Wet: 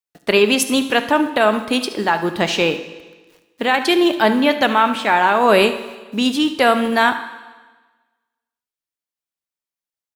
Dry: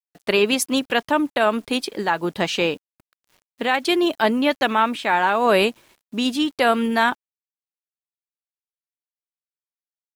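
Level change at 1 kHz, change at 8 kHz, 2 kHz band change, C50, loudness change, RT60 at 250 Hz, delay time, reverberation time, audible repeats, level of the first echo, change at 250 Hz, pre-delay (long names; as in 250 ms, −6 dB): +4.0 dB, +4.0 dB, +4.0 dB, 10.5 dB, +4.0 dB, 1.4 s, 72 ms, 1.3 s, 1, −16.0 dB, +4.0 dB, 18 ms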